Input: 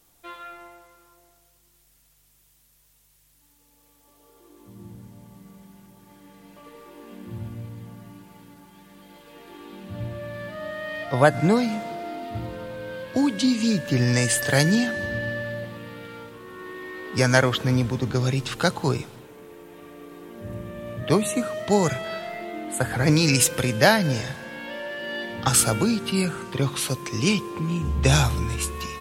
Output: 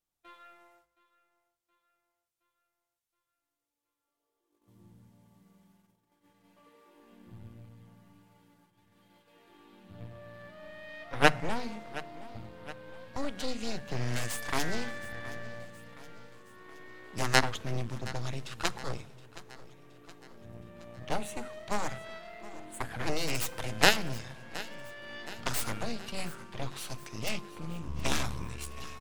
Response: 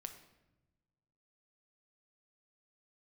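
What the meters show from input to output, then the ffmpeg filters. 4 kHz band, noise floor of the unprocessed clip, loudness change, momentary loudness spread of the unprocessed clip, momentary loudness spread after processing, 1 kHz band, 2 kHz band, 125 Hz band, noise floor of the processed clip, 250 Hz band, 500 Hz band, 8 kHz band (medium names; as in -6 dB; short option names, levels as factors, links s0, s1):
-7.0 dB, -61 dBFS, -10.5 dB, 20 LU, 24 LU, -7.0 dB, -7.5 dB, -15.0 dB, under -85 dBFS, -16.0 dB, -12.5 dB, -13.0 dB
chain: -filter_complex "[0:a]agate=range=0.224:threshold=0.00355:ratio=16:detection=peak,highshelf=f=9600:g=-6.5,aeval=exprs='0.708*(cos(1*acos(clip(val(0)/0.708,-1,1)))-cos(1*PI/2))+0.282*(cos(3*acos(clip(val(0)/0.708,-1,1)))-cos(3*PI/2))+0.0282*(cos(8*acos(clip(val(0)/0.708,-1,1)))-cos(8*PI/2))':c=same,equalizer=f=370:w=1.3:g=-3,bandreject=f=50:t=h:w=6,bandreject=f=100:t=h:w=6,bandreject=f=150:t=h:w=6,bandreject=f=200:t=h:w=6,bandreject=f=250:t=h:w=6,aecho=1:1:720|1440|2160|2880|3600:0.126|0.0692|0.0381|0.0209|0.0115,asplit=2[s0][s1];[1:a]atrim=start_sample=2205,afade=t=out:st=0.18:d=0.01,atrim=end_sample=8379[s2];[s1][s2]afir=irnorm=-1:irlink=0,volume=0.501[s3];[s0][s3]amix=inputs=2:normalize=0,volume=0.891"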